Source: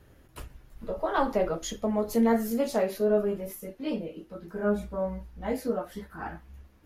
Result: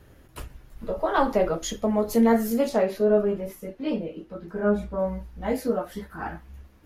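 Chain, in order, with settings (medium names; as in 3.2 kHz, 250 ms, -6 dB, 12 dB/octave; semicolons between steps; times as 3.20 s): 2.69–4.99 s: low-pass 3.8 kHz 6 dB/octave; trim +4 dB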